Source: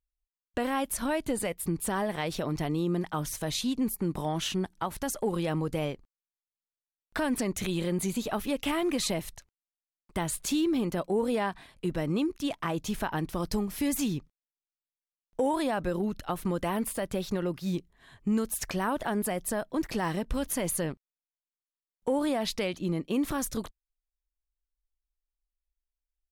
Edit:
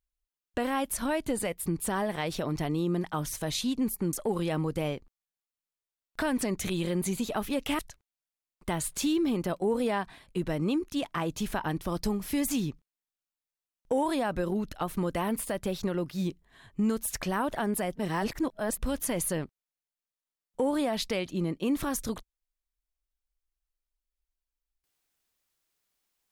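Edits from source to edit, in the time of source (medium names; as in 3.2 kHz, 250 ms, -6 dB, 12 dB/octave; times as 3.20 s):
4.13–5.10 s: delete
8.76–9.27 s: delete
19.43–20.27 s: reverse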